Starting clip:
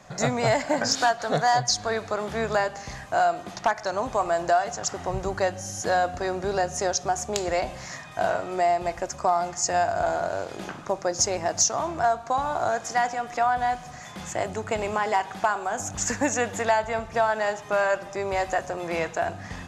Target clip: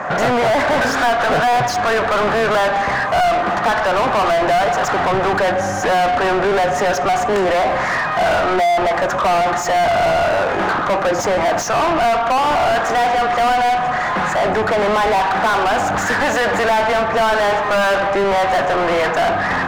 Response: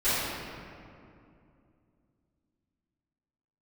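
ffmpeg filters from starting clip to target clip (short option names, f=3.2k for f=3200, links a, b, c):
-filter_complex "[0:a]highshelf=f=2.4k:t=q:w=1.5:g=-14,asplit=2[a][b];[b]highpass=f=720:p=1,volume=37dB,asoftclip=type=tanh:threshold=-8.5dB[c];[a][c]amix=inputs=2:normalize=0,lowpass=f=2.2k:p=1,volume=-6dB"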